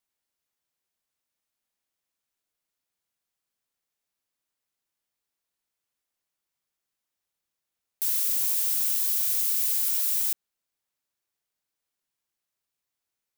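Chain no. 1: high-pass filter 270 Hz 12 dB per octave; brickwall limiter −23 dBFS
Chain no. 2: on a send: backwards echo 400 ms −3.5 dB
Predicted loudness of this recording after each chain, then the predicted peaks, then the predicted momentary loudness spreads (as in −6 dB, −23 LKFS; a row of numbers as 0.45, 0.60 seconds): −29.5, −21.5 LKFS; −23.0, −11.0 dBFS; 4, 7 LU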